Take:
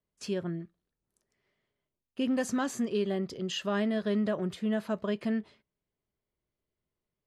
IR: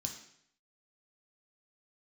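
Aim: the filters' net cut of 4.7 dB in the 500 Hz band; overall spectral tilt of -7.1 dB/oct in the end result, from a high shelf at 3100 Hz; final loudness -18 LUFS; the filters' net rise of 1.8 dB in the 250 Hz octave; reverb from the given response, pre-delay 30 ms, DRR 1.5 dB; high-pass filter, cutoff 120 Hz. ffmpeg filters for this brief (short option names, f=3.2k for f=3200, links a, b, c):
-filter_complex "[0:a]highpass=120,equalizer=f=250:t=o:g=4,equalizer=f=500:t=o:g=-7.5,highshelf=f=3.1k:g=-9,asplit=2[a][b];[1:a]atrim=start_sample=2205,adelay=30[c];[b][c]afir=irnorm=-1:irlink=0,volume=1dB[d];[a][d]amix=inputs=2:normalize=0,volume=6.5dB"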